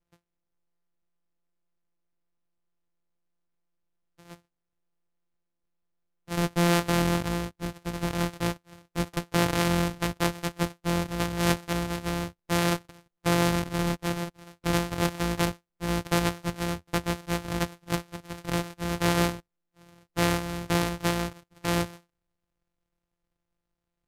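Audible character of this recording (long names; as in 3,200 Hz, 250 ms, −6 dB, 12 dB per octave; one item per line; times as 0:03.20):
a buzz of ramps at a fixed pitch in blocks of 256 samples
AAC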